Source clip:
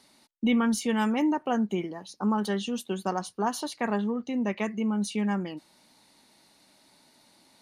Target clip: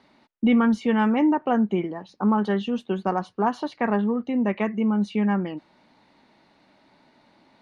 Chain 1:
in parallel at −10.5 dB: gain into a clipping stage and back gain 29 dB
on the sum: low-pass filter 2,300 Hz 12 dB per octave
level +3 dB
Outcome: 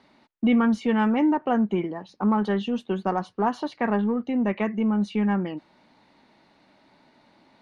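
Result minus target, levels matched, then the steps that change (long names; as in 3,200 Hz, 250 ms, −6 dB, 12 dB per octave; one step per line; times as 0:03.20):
gain into a clipping stage and back: distortion +15 dB
change: gain into a clipping stage and back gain 19.5 dB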